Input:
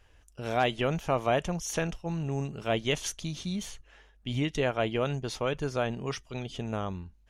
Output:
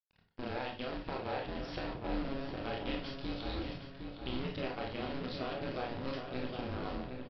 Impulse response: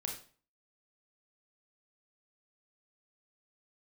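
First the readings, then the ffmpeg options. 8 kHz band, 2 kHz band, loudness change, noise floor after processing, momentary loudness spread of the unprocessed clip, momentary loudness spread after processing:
below −30 dB, −8.0 dB, −8.5 dB, −67 dBFS, 9 LU, 3 LU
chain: -filter_complex "[0:a]agate=range=-12dB:threshold=-57dB:ratio=16:detection=peak,acompressor=threshold=-33dB:ratio=16,acrusher=bits=7:dc=4:mix=0:aa=0.000001,aeval=exprs='val(0)*sin(2*PI*130*n/s)':channel_layout=same,aresample=11025,aresample=44100,asplit=2[link_01][link_02];[link_02]adelay=761,lowpass=frequency=2600:poles=1,volume=-5.5dB,asplit=2[link_03][link_04];[link_04]adelay=761,lowpass=frequency=2600:poles=1,volume=0.47,asplit=2[link_05][link_06];[link_06]adelay=761,lowpass=frequency=2600:poles=1,volume=0.47,asplit=2[link_07][link_08];[link_08]adelay=761,lowpass=frequency=2600:poles=1,volume=0.47,asplit=2[link_09][link_10];[link_10]adelay=761,lowpass=frequency=2600:poles=1,volume=0.47,asplit=2[link_11][link_12];[link_12]adelay=761,lowpass=frequency=2600:poles=1,volume=0.47[link_13];[link_01][link_03][link_05][link_07][link_09][link_11][link_13]amix=inputs=7:normalize=0[link_14];[1:a]atrim=start_sample=2205,asetrate=52920,aresample=44100[link_15];[link_14][link_15]afir=irnorm=-1:irlink=0,volume=2.5dB"

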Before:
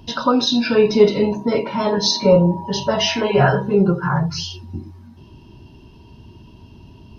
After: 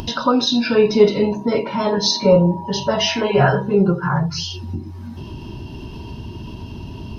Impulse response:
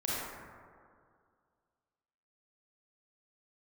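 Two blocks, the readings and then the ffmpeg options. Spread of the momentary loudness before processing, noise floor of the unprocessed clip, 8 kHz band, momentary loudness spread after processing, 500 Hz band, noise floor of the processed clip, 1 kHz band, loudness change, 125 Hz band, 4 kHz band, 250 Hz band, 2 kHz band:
11 LU, −45 dBFS, can't be measured, 19 LU, 0.0 dB, −34 dBFS, 0.0 dB, 0.0 dB, +0.5 dB, 0.0 dB, 0.0 dB, 0.0 dB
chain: -af "acompressor=mode=upward:threshold=-20dB:ratio=2.5"

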